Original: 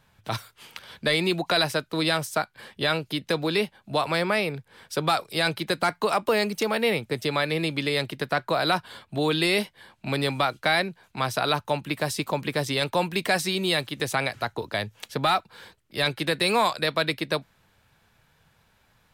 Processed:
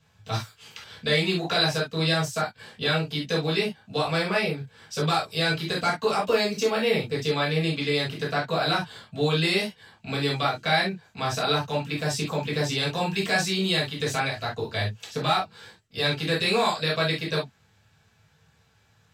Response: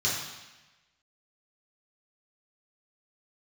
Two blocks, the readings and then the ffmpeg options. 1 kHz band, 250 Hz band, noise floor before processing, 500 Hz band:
-1.5 dB, 0.0 dB, -65 dBFS, 0.0 dB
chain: -filter_complex "[1:a]atrim=start_sample=2205,afade=t=out:st=0.13:d=0.01,atrim=end_sample=6174,asetrate=48510,aresample=44100[a];[0:a][a]afir=irnorm=-1:irlink=0,volume=-8.5dB"

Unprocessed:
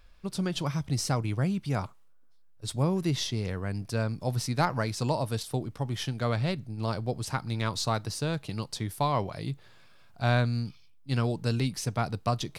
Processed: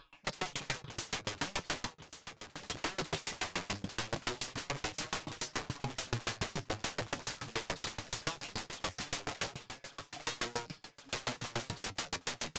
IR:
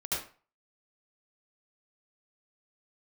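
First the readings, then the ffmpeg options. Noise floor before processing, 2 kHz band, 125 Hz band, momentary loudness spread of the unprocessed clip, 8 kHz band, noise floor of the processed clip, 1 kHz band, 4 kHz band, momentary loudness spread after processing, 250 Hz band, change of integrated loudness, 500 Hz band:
-54 dBFS, -1.5 dB, -17.5 dB, 7 LU, -2.0 dB, -64 dBFS, -8.5 dB, -2.0 dB, 6 LU, -14.0 dB, -9.0 dB, -11.0 dB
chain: -filter_complex "[0:a]afftfilt=real='re*pow(10,13/40*sin(2*PI*(0.62*log(max(b,1)*sr/1024/100)/log(2)-(-2.3)*(pts-256)/sr)))':imag='im*pow(10,13/40*sin(2*PI*(0.62*log(max(b,1)*sr/1024/100)/log(2)-(-2.3)*(pts-256)/sr)))':win_size=1024:overlap=0.75,highpass=f=400:p=1,highshelf=f=6.3k:g=-11.5,aecho=1:1:7.1:0.93,acompressor=threshold=-33dB:ratio=5,aeval=exprs='(mod(84.1*val(0)+1,2)-1)/84.1':c=same,asplit=2[a][b];[b]aecho=0:1:1120|2240|3360|4480|5600:0.316|0.142|0.064|0.0288|0.013[c];[a][c]amix=inputs=2:normalize=0,flanger=delay=6.3:depth=7.4:regen=57:speed=0.19:shape=sinusoidal,aeval=exprs='0.0141*(cos(1*acos(clip(val(0)/0.0141,-1,1)))-cos(1*PI/2))+0.00158*(cos(2*acos(clip(val(0)/0.0141,-1,1)))-cos(2*PI/2))+0.000251*(cos(3*acos(clip(val(0)/0.0141,-1,1)))-cos(3*PI/2))+0.000398*(cos(4*acos(clip(val(0)/0.0141,-1,1)))-cos(4*PI/2))+0.000126*(cos(6*acos(clip(val(0)/0.0141,-1,1)))-cos(6*PI/2))':c=same,aresample=16000,aresample=44100,aeval=exprs='val(0)*pow(10,-30*if(lt(mod(7*n/s,1),2*abs(7)/1000),1-mod(7*n/s,1)/(2*abs(7)/1000),(mod(7*n/s,1)-2*abs(7)/1000)/(1-2*abs(7)/1000))/20)':c=same,volume=17.5dB"

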